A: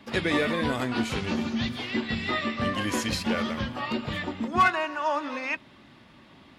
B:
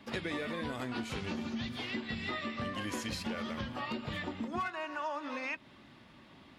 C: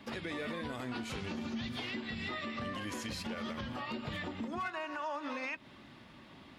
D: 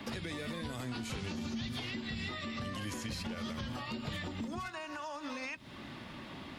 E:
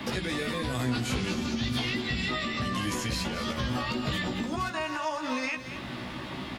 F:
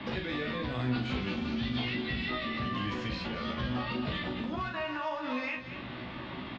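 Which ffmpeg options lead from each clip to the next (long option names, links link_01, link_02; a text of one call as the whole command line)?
ffmpeg -i in.wav -af "acompressor=threshold=-30dB:ratio=6,volume=-4dB" out.wav
ffmpeg -i in.wav -af "alimiter=level_in=8dB:limit=-24dB:level=0:latency=1:release=115,volume=-8dB,volume=2dB" out.wav
ffmpeg -i in.wav -filter_complex "[0:a]acrossover=split=160|4300[link_01][link_02][link_03];[link_01]acompressor=threshold=-49dB:ratio=4[link_04];[link_02]acompressor=threshold=-51dB:ratio=4[link_05];[link_03]acompressor=threshold=-56dB:ratio=4[link_06];[link_04][link_05][link_06]amix=inputs=3:normalize=0,volume=8.5dB" out.wav
ffmpeg -i in.wav -filter_complex "[0:a]asplit=2[link_01][link_02];[link_02]adelay=16,volume=-3.5dB[link_03];[link_01][link_03]amix=inputs=2:normalize=0,asplit=2[link_04][link_05];[link_05]aecho=0:1:224:0.282[link_06];[link_04][link_06]amix=inputs=2:normalize=0,volume=7.5dB" out.wav
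ffmpeg -i in.wav -filter_complex "[0:a]lowpass=frequency=3900:width=0.5412,lowpass=frequency=3900:width=1.3066,asplit=2[link_01][link_02];[link_02]adelay=40,volume=-6.5dB[link_03];[link_01][link_03]amix=inputs=2:normalize=0,volume=-4dB" out.wav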